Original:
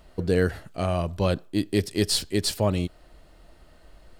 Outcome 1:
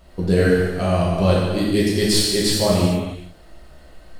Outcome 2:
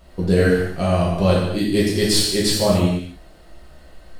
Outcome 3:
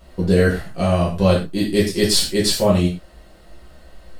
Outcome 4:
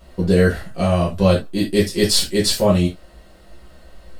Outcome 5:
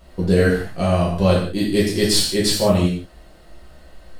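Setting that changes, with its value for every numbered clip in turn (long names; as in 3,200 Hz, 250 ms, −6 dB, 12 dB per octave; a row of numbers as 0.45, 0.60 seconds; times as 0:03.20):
reverb whose tail is shaped and stops, gate: 480, 320, 140, 100, 210 milliseconds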